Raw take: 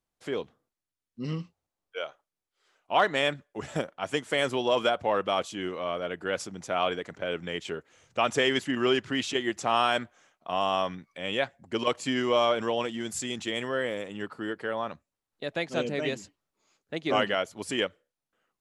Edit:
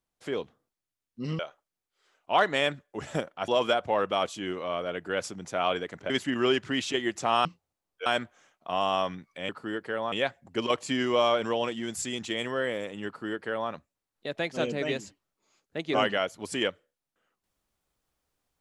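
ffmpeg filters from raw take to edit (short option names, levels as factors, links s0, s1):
-filter_complex "[0:a]asplit=8[s0][s1][s2][s3][s4][s5][s6][s7];[s0]atrim=end=1.392[s8];[s1]atrim=start=1.998:end=4.092[s9];[s2]atrim=start=4.638:end=7.262[s10];[s3]atrim=start=8.508:end=9.862[s11];[s4]atrim=start=1.388:end=2.002[s12];[s5]atrim=start=9.858:end=11.292[s13];[s6]atrim=start=14.238:end=14.872[s14];[s7]atrim=start=11.288[s15];[s8][s9]acrossfade=d=0.004:c1=hsin:c2=hsin[s16];[s16][s10]acrossfade=d=0.004:c1=hsin:c2=hsin[s17];[s17][s11]acrossfade=d=0.004:c1=hsin:c2=hsin[s18];[s18][s12]acrossfade=d=0.004:c1=hsin:c2=hsin[s19];[s19][s13]acrossfade=d=0.004:c1=hsin:c2=hsin[s20];[s20][s14]acrossfade=d=0.004:c1=hsin:c2=hsin[s21];[s21][s15]acrossfade=d=0.004:c1=hsin:c2=hsin"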